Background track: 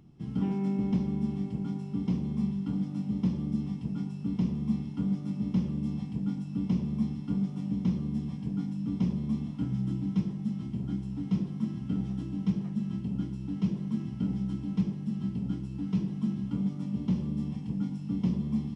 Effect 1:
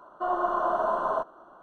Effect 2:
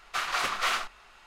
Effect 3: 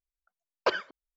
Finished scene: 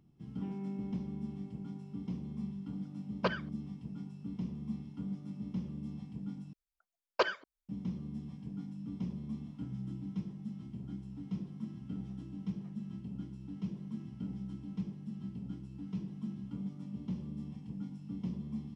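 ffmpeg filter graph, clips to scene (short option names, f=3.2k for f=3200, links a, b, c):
-filter_complex "[3:a]asplit=2[a][b];[0:a]volume=-10dB[c];[a]lowpass=4.7k[d];[c]asplit=2[e][f];[e]atrim=end=6.534[g];[b]atrim=end=1.16,asetpts=PTS-STARTPTS,volume=-3dB[h];[f]atrim=start=7.686[i];[d]atrim=end=1.16,asetpts=PTS-STARTPTS,volume=-6.5dB,afade=t=in:d=0.004:c=hsin,afade=t=out:st=1.156:d=0.004:c=hsin,adelay=2580[j];[g][h]acrossfade=d=0.004:c1=hsin:c2=hsin[k];[k][i]acrossfade=d=0.004:c1=hsin:c2=hsin[l];[l][j]amix=inputs=2:normalize=0"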